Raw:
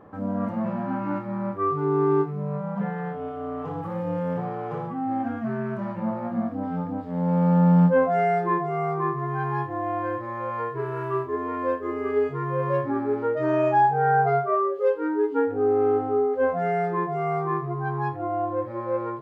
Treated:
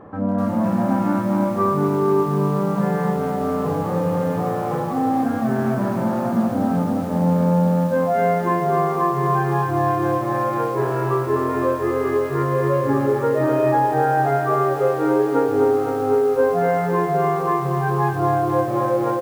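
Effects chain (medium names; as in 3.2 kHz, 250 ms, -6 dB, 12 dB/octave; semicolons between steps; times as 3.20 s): treble shelf 3 kHz -7.5 dB; compression 20:1, threshold -23 dBFS, peak gain reduction 10 dB; delay 298 ms -10.5 dB; bit-crushed delay 254 ms, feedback 80%, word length 8-bit, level -7.5 dB; trim +7.5 dB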